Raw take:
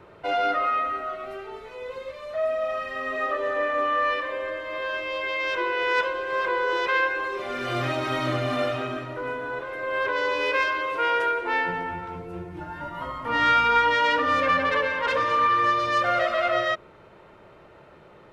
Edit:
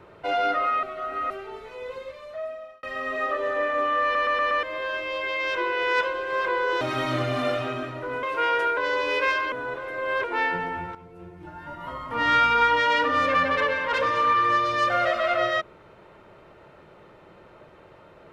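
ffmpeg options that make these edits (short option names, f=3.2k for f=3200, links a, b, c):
-filter_complex "[0:a]asplit=15[a][b][c][d][e][f][g][h][i][j][k][l][m][n][o];[a]atrim=end=0.832[p];[b]atrim=start=0.828:end=1.302,asetpts=PTS-STARTPTS,areverse[q];[c]atrim=start=1.298:end=2.83,asetpts=PTS-STARTPTS,afade=t=out:st=0.602:d=0.93[r];[d]atrim=start=2.83:end=4.152,asetpts=PTS-STARTPTS,afade=t=in:d=0.004:c=hsin[s];[e]atrim=start=4.028:end=4.152[t];[f]atrim=start=4.028:end=4.152[u];[g]atrim=start=4.028:end=4.152[v];[h]atrim=start=4.028:end=4.152[w];[i]atrim=start=4.628:end=6.812[x];[j]atrim=start=7.948:end=9.372[y];[k]atrim=start=10.838:end=11.382[z];[l]atrim=start=10.088:end=10.842[aa];[m]atrim=start=9.368:end=10.092[ab];[n]atrim=start=11.378:end=12.09,asetpts=PTS-STARTPTS,afade=t=out:st=0.708:d=0.004:c=hsin:silence=0.251189[ac];[o]atrim=start=12.09,asetpts=PTS-STARTPTS,afade=t=in:d=1.35:silence=0.251189[ad];[p][q]acrossfade=d=0.004:c1=hsin:c2=hsin[ae];[r][s]concat=n=2:v=0:a=1[af];[ae][af]acrossfade=d=0.004:c1=hsin:c2=hsin[ag];[ag][t]acrossfade=d=0.004:c1=hsin:c2=hsin[ah];[ah][u]acrossfade=d=0.004:c1=hsin:c2=hsin[ai];[ai][v]acrossfade=d=0.004:c1=hsin:c2=hsin[aj];[aj][w]acrossfade=d=0.004:c1=hsin:c2=hsin[ak];[ak][x]acrossfade=d=0.004:c1=hsin:c2=hsin[al];[al][y]acrossfade=d=0.004:c1=hsin:c2=hsin[am];[am][z]acrossfade=d=0.004:c1=hsin:c2=hsin[an];[an][aa]acrossfade=d=0.004:c1=hsin:c2=hsin[ao];[ao][ab]acrossfade=d=0.004:c1=hsin:c2=hsin[ap];[ac][ad]concat=n=2:v=0:a=1[aq];[ap][aq]acrossfade=d=0.004:c1=hsin:c2=hsin"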